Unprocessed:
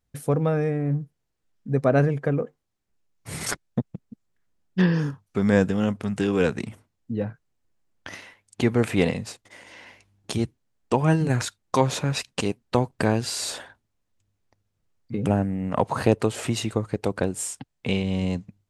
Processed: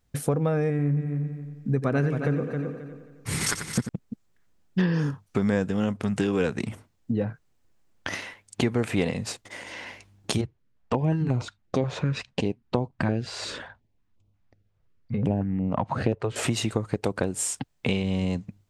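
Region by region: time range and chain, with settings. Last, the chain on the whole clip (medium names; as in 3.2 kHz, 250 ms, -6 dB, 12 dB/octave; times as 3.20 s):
0.70–3.89 s: peaking EQ 640 Hz -9.5 dB 0.65 oct + multi-head delay 89 ms, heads first and third, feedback 41%, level -11 dB
10.41–16.36 s: tape spacing loss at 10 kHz 23 dB + step-sequenced notch 5.6 Hz 250–1700 Hz
whole clip: compression 3:1, threshold -31 dBFS; peaking EQ 11 kHz -3 dB 0.34 oct; trim +7 dB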